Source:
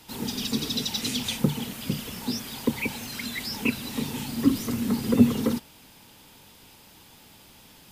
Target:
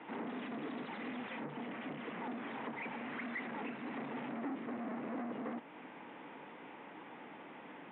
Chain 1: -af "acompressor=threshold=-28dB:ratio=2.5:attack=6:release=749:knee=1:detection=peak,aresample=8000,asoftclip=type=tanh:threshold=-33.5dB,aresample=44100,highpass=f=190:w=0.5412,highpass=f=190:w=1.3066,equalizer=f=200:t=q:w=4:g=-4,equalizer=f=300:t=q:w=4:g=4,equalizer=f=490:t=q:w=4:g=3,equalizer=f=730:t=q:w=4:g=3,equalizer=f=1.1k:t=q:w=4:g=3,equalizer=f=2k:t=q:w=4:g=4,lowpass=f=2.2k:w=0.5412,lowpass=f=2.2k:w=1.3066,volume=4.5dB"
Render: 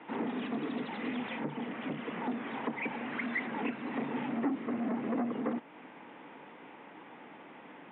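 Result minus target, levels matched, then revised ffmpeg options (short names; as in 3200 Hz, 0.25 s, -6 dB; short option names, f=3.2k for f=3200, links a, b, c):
soft clip: distortion -5 dB
-af "acompressor=threshold=-28dB:ratio=2.5:attack=6:release=749:knee=1:detection=peak,aresample=8000,asoftclip=type=tanh:threshold=-44dB,aresample=44100,highpass=f=190:w=0.5412,highpass=f=190:w=1.3066,equalizer=f=200:t=q:w=4:g=-4,equalizer=f=300:t=q:w=4:g=4,equalizer=f=490:t=q:w=4:g=3,equalizer=f=730:t=q:w=4:g=3,equalizer=f=1.1k:t=q:w=4:g=3,equalizer=f=2k:t=q:w=4:g=4,lowpass=f=2.2k:w=0.5412,lowpass=f=2.2k:w=1.3066,volume=4.5dB"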